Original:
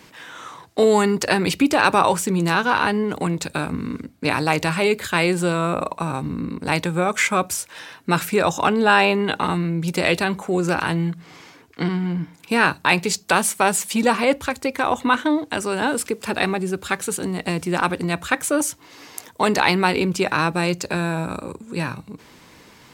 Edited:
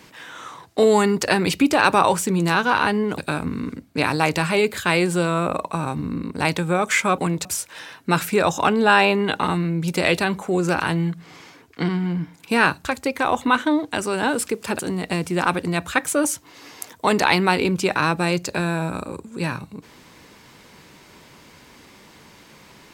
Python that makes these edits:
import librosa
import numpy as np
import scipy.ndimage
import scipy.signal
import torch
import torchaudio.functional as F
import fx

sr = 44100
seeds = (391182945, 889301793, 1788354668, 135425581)

y = fx.edit(x, sr, fx.move(start_s=3.18, length_s=0.27, to_s=7.45),
    fx.cut(start_s=12.85, length_s=1.59),
    fx.cut(start_s=16.38, length_s=0.77), tone=tone)